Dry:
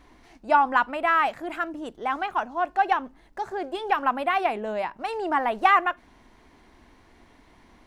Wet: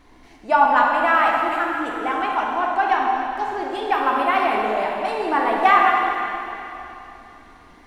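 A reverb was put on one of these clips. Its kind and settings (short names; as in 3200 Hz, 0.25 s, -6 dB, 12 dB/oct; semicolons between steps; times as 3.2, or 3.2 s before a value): plate-style reverb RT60 3 s, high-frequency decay 0.95×, pre-delay 0 ms, DRR -2 dB; gain +1.5 dB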